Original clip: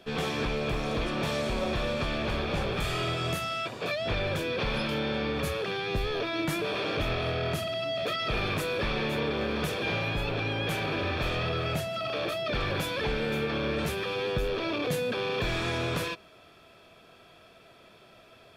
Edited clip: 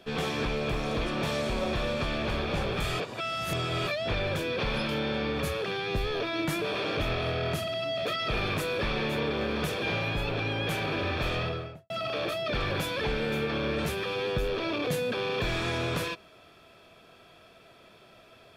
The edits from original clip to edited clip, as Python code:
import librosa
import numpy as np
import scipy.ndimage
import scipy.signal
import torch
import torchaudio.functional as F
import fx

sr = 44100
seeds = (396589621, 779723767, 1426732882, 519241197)

y = fx.studio_fade_out(x, sr, start_s=11.36, length_s=0.54)
y = fx.edit(y, sr, fx.reverse_span(start_s=2.99, length_s=0.88), tone=tone)